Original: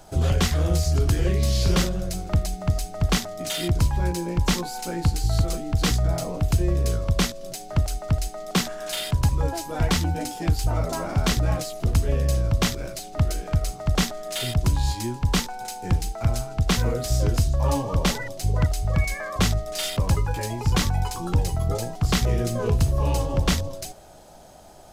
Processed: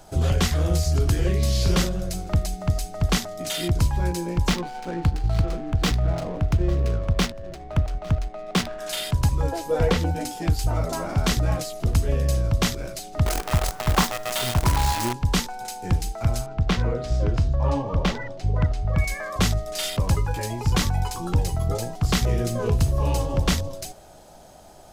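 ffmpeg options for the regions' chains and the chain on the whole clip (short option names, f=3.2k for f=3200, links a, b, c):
-filter_complex "[0:a]asettb=1/sr,asplit=3[a][b][c];[a]atrim=end=4.494[d];[b]atrim=start=4.49:end=8.79,asetpts=PTS-STARTPTS,afade=t=in:d=0.004:c=qsin,afade=t=out:st=4.296:d=0.004:c=qsin,adynamicsmooth=sensitivity=7:basefreq=550,aecho=1:1:854:0.0841,atrim=end_sample=189630[e];[c]atrim=start=8.786[f];[d][e]acrossfade=d=0.004:c1=hsin:c2=qsin[g];[g][f]acrossfade=d=0.004:c1=qsin:c2=hsin,asettb=1/sr,asplit=3[h][i][j];[h]atrim=end=9.524[k];[i]atrim=start=9.52:end=10.11,asetpts=PTS-STARTPTS,afade=t=in:d=0.004:c=qsin,afade=t=out:st=0.586:d=0.004:c=qsin,equalizer=f=490:t=o:w=0.3:g=14.5,acrossover=split=3900[l][m];[m]acompressor=threshold=-38dB:ratio=4:attack=1:release=60[n];[l][n]amix=inputs=2:normalize=0[o];[j]atrim=start=10.106[p];[k][o]acrossfade=d=0.004:c1=hsin:c2=qsin[q];[q][p]acrossfade=d=0.004:c1=qsin:c2=hsin,asettb=1/sr,asplit=3[r][s][t];[r]atrim=end=13.264[u];[s]atrim=start=13.26:end=15.13,asetpts=PTS-STARTPTS,afade=t=in:d=0.004:c=qsin,afade=t=out:st=1.866:d=0.004:c=qsin,equalizer=f=980:w=1.6:g=12,acrusher=bits=5:dc=4:mix=0:aa=0.000001[v];[t]atrim=start=15.126[w];[u][v]acrossfade=d=0.004:c1=hsin:c2=qsin[x];[x][w]acrossfade=d=0.004:c1=qsin:c2=hsin,asettb=1/sr,asplit=3[y][z][aa];[y]atrim=end=16.464[ab];[z]atrim=start=16.46:end=18.98,asetpts=PTS-STARTPTS,afade=t=in:d=0.004:c=qsin,afade=t=out:st=2.516:d=0.004:c=qsin,highshelf=f=8.3k:g=-3,bandreject=f=121.9:t=h:w=4,bandreject=f=243.8:t=h:w=4,bandreject=f=365.7:t=h:w=4,bandreject=f=487.6:t=h:w=4,bandreject=f=609.5:t=h:w=4,bandreject=f=731.4:t=h:w=4,bandreject=f=853.3:t=h:w=4,bandreject=f=975.2:t=h:w=4,bandreject=f=1.0971k:t=h:w=4,bandreject=f=1.219k:t=h:w=4,bandreject=f=1.3409k:t=h:w=4,bandreject=f=1.4628k:t=h:w=4,bandreject=f=1.5847k:t=h:w=4,bandreject=f=1.7066k:t=h:w=4,bandreject=f=1.8285k:t=h:w=4,adynamicsmooth=sensitivity=1:basefreq=3.3k[ac];[aa]atrim=start=18.976[ad];[ab][ac]acrossfade=d=0.004:c1=hsin:c2=qsin[ae];[ae][ad]acrossfade=d=0.004:c1=qsin:c2=hsin"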